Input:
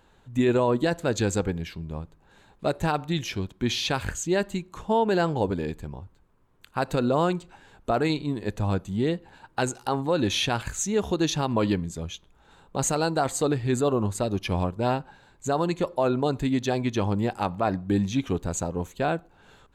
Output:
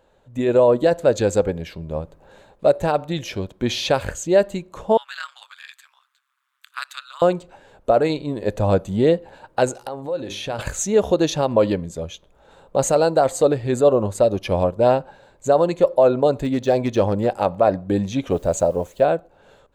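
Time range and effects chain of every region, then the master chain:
4.97–7.22 Chebyshev high-pass 1200 Hz, order 5 + bell 3500 Hz +6 dB 0.29 oct + ring modulator 66 Hz
9.77–10.59 notches 50/100/150/200/250/300/350/400 Hz + compressor 10:1, threshold -32 dBFS
16.43–17.26 de-esser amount 90% + overloaded stage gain 17 dB
18.31–19.04 bell 630 Hz +5.5 dB 0.35 oct + requantised 10-bit, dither triangular
whole clip: bell 560 Hz +14 dB 0.65 oct; AGC; gain -4 dB

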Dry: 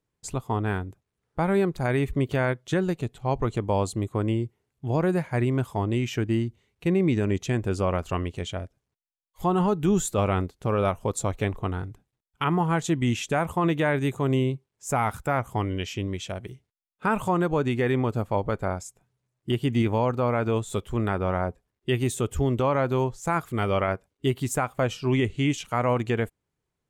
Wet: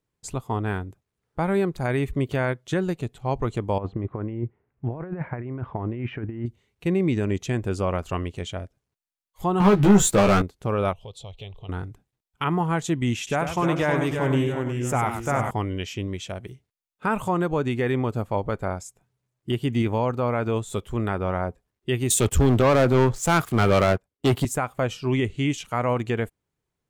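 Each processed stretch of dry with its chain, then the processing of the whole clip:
3.78–6.46 LPF 2100 Hz 24 dB/oct + negative-ratio compressor -28 dBFS, ratio -0.5
9.6–10.42 high shelf 8000 Hz -7.5 dB + sample leveller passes 3 + doubler 15 ms -3.5 dB
10.93–11.69 EQ curve 110 Hz 0 dB, 190 Hz -7 dB, 280 Hz -18 dB, 420 Hz -4 dB, 820 Hz -4 dB, 1600 Hz -20 dB, 3200 Hz +12 dB, 6600 Hz -10 dB, 11000 Hz -14 dB + compressor 2:1, threshold -43 dBFS
13.17–15.51 echoes that change speed 0.296 s, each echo -1 st, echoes 3, each echo -6 dB + echo 98 ms -8.5 dB
22.1–24.45 sample leveller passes 3 + three-band expander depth 40%
whole clip: dry

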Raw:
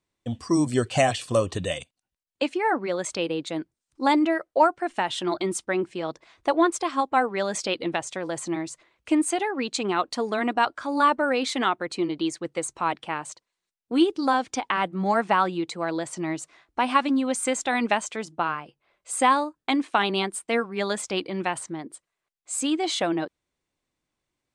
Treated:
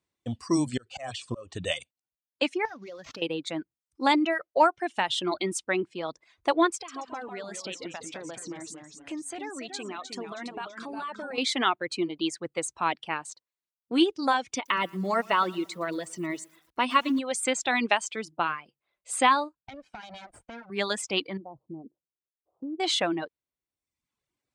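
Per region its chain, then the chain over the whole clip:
0.69–1.75 steep low-pass 8800 Hz 72 dB/oct + auto swell 0.352 s
2.65–3.22 CVSD 32 kbps + compressor 8:1, threshold -38 dBFS + sample leveller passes 1
6.75–11.38 compressor 3:1, threshold -34 dBFS + echoes that change speed 0.131 s, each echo -1 st, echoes 3, each echo -6 dB
14.54–17.19 notch comb 800 Hz + lo-fi delay 0.115 s, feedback 55%, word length 7-bit, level -13 dB
19.55–20.7 minimum comb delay 1.3 ms + compressor 5:1, threshold -36 dBFS + air absorption 100 m
21.37–22.8 Gaussian blur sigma 14 samples + compressor 2:1, threshold -33 dBFS
whole clip: HPF 47 Hz; reverb removal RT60 0.86 s; dynamic EQ 3100 Hz, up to +6 dB, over -40 dBFS, Q 0.73; gain -2.5 dB

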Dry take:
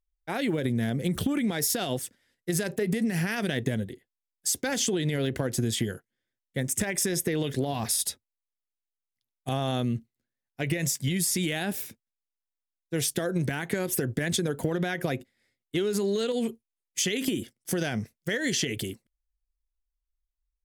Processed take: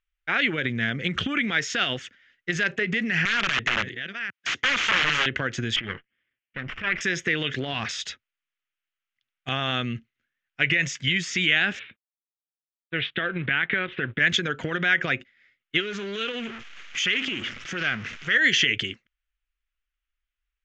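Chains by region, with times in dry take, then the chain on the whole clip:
3.25–5.26 reverse delay 0.527 s, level -12 dB + HPF 96 Hz 24 dB/oct + wrapped overs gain 24 dB
5.76–7.01 minimum comb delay 0.38 ms + negative-ratio compressor -33 dBFS + air absorption 240 m
11.79–14.19 G.711 law mismatch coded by A + Chebyshev low-pass 3800 Hz, order 5
15.8–18.35 zero-crossing step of -34.5 dBFS + compressor 2:1, threshold -32 dBFS + Doppler distortion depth 0.18 ms
whole clip: elliptic low-pass 6700 Hz, stop band 40 dB; band shelf 2000 Hz +15.5 dB; gain -1.5 dB

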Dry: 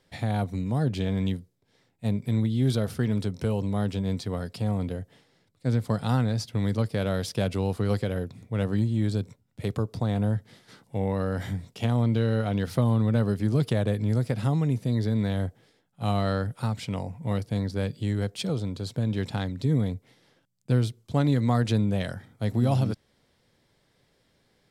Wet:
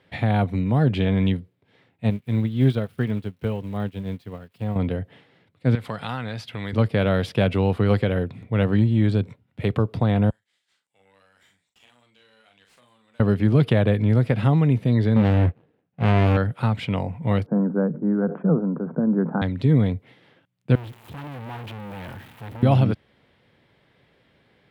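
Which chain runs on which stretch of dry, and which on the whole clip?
2.1–4.76 switching spikes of -31 dBFS + de-esser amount 25% + upward expander 2.5:1, over -40 dBFS
5.75–6.73 tilt shelf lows -6.5 dB, about 640 Hz + compressor 2:1, threshold -38 dBFS
10.3–13.2 band-pass 7500 Hz, Q 3.6 + doubler 41 ms -6 dB + tube stage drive 50 dB, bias 0.65
15.16–16.37 median filter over 41 samples + sample leveller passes 2 + doubler 13 ms -10 dB
17.46–19.42 Chebyshev band-pass 160–1500 Hz, order 5 + low shelf 200 Hz +9.5 dB + sustainer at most 150 dB/s
20.75–22.63 switching spikes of -25 dBFS + tube stage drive 41 dB, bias 0.5 + bell 890 Hz +6.5 dB 0.36 oct
whole clip: HPF 57 Hz; resonant high shelf 4100 Hz -13 dB, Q 1.5; gain +6.5 dB

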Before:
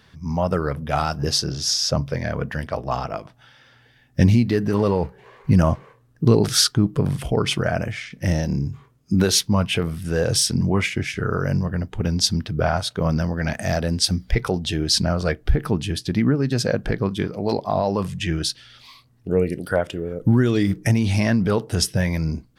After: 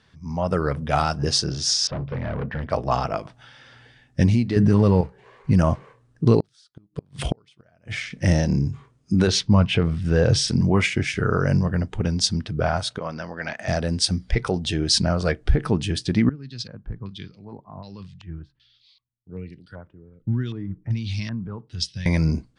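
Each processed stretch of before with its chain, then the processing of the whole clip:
1.87–2.7 overloaded stage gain 26 dB + air absorption 370 m
4.56–5.01 tone controls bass +10 dB, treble +1 dB + fast leveller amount 100%
6.4–7.95 bell 3700 Hz +6 dB + flipped gate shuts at -12 dBFS, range -41 dB
9.27–10.48 LPF 5000 Hz + low shelf 180 Hz +7 dB
12.98–13.68 HPF 910 Hz 6 dB/oct + air absorption 150 m
16.29–22.06 passive tone stack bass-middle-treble 6-0-2 + LFO low-pass square 1.3 Hz 990–4100 Hz + three-band expander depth 70%
whole clip: steep low-pass 9900 Hz 96 dB/oct; AGC; gain -6 dB

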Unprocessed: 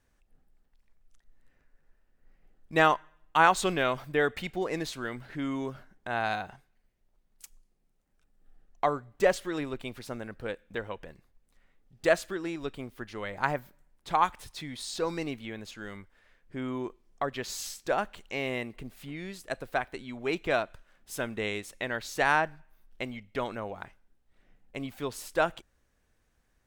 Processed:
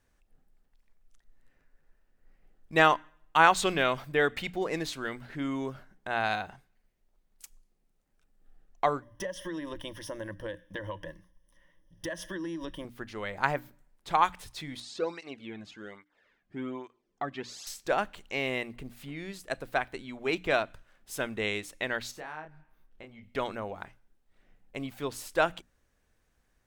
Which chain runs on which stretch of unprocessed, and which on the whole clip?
9.02–12.85 ripple EQ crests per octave 1.2, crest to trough 17 dB + compressor 10:1, threshold -32 dBFS
14.8–17.67 air absorption 74 m + tape flanging out of phase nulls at 1.2 Hz, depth 2.3 ms
22.11–23.23 high shelf 3500 Hz -9.5 dB + compressor 2:1, threshold -53 dBFS + doubler 26 ms -5 dB
whole clip: notches 60/120/180/240/300 Hz; dynamic EQ 3000 Hz, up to +3 dB, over -39 dBFS, Q 0.73

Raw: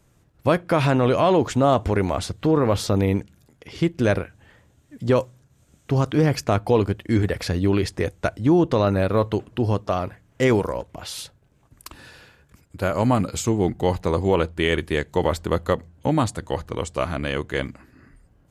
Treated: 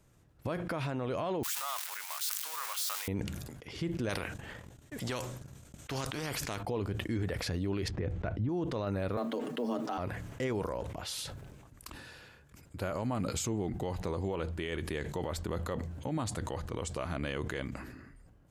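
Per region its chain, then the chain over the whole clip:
1.43–3.08 switching spikes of -16 dBFS + HPF 1100 Hz 24 dB/oct
4.09–6.63 gate -53 dBFS, range -32 dB + spectral compressor 2:1
7.88–8.49 LPF 2800 Hz + low shelf 320 Hz +9 dB
9.17–9.98 G.711 law mismatch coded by mu + comb 6.1 ms, depth 50% + frequency shift +120 Hz
whole clip: compressor, threshold -22 dBFS; limiter -20 dBFS; sustainer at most 37 dB/s; gain -5.5 dB

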